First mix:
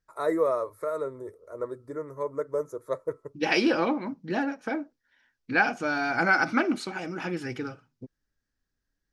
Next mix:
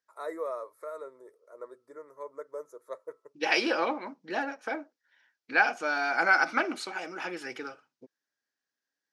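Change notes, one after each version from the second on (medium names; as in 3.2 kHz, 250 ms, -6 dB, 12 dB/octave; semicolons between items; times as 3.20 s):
first voice -7.5 dB; master: add high-pass 480 Hz 12 dB/octave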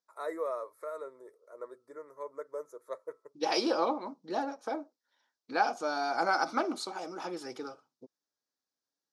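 second voice: add high-order bell 2.1 kHz -13 dB 1.2 oct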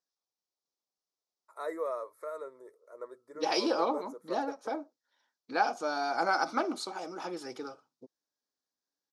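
first voice: entry +1.40 s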